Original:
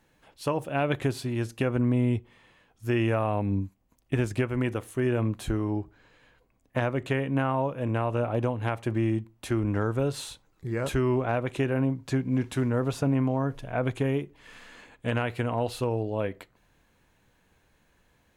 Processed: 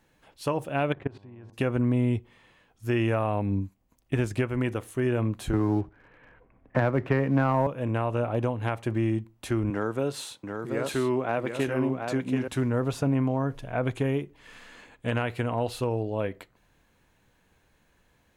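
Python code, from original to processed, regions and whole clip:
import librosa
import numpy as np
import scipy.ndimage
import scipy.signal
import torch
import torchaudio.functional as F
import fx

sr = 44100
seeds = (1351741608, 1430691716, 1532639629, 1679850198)

y = fx.lowpass(x, sr, hz=2000.0, slope=12, at=(0.92, 1.52), fade=0.02)
y = fx.level_steps(y, sr, step_db=23, at=(0.92, 1.52), fade=0.02)
y = fx.dmg_buzz(y, sr, base_hz=100.0, harmonics=11, level_db=-57.0, tilt_db=-5, odd_only=False, at=(0.92, 1.52), fade=0.02)
y = fx.chain(y, sr, fx.lowpass(hz=2200.0, slope=24),
    fx.leveller(passes=1),
    fx.band_squash(depth_pct=40), at=(5.53, 7.67))
y = fx.chain(y, sr, fx.highpass(hz=180.0, slope=12),
    fx.echo_single(ms=732, db=-5.5), at=(9.7, 12.48))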